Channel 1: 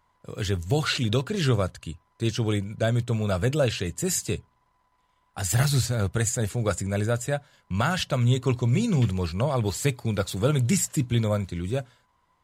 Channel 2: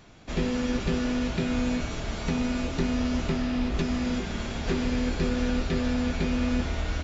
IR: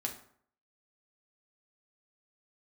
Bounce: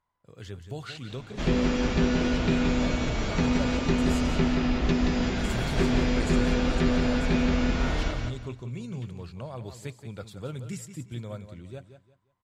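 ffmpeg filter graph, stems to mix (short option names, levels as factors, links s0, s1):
-filter_complex "[0:a]volume=0.211,asplit=2[s0][s1];[s1]volume=0.282[s2];[1:a]adelay=1100,volume=1.33,asplit=2[s3][s4];[s4]volume=0.596[s5];[s2][s5]amix=inputs=2:normalize=0,aecho=0:1:176|352|528|704:1|0.27|0.0729|0.0197[s6];[s0][s3][s6]amix=inputs=3:normalize=0,highshelf=f=7600:g=-8"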